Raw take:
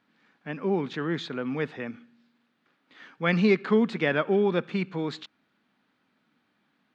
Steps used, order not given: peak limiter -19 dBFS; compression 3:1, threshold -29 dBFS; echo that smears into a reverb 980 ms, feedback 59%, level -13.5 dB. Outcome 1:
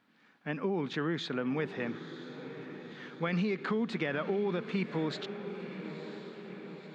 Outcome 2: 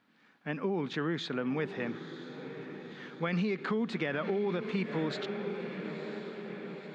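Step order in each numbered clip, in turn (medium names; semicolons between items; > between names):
peak limiter > echo that smears into a reverb > compression; echo that smears into a reverb > peak limiter > compression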